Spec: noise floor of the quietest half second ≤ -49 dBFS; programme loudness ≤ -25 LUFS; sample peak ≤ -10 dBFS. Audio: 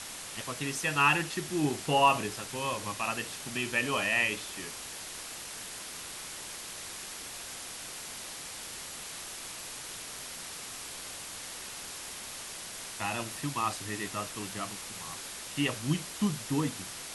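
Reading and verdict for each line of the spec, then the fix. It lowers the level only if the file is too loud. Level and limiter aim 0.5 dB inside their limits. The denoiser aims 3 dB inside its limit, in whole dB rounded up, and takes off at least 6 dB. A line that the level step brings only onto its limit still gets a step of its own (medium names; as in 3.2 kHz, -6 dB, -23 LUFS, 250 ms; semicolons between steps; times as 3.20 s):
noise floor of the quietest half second -42 dBFS: fail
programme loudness -33.5 LUFS: pass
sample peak -11.5 dBFS: pass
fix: noise reduction 10 dB, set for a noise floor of -42 dBFS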